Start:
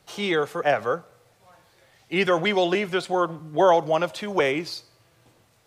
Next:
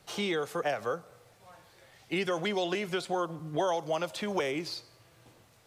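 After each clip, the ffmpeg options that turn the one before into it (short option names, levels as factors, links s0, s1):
-filter_complex "[0:a]acrossover=split=920|4000[s0][s1][s2];[s0]acompressor=threshold=0.0282:ratio=4[s3];[s1]acompressor=threshold=0.0126:ratio=4[s4];[s2]acompressor=threshold=0.00794:ratio=4[s5];[s3][s4][s5]amix=inputs=3:normalize=0"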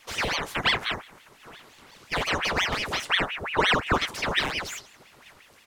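-filter_complex "[0:a]acrossover=split=130|2300[s0][s1][s2];[s1]aecho=1:1:1.2:0.73[s3];[s2]asoftclip=type=hard:threshold=0.01[s4];[s0][s3][s4]amix=inputs=3:normalize=0,aeval=exprs='val(0)*sin(2*PI*1500*n/s+1500*0.85/5.7*sin(2*PI*5.7*n/s))':c=same,volume=2.66"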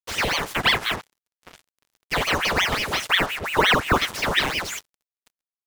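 -af "acrusher=bits=5:mix=0:aa=0.5,volume=1.58"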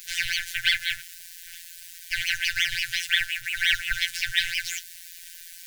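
-af "aeval=exprs='val(0)+0.5*0.0376*sgn(val(0))':c=same,afftfilt=real='hypot(re,im)*cos(PI*b)':imag='0':win_size=1024:overlap=0.75,afftfilt=real='re*(1-between(b*sr/4096,130,1400))':imag='im*(1-between(b*sr/4096,130,1400))':win_size=4096:overlap=0.75"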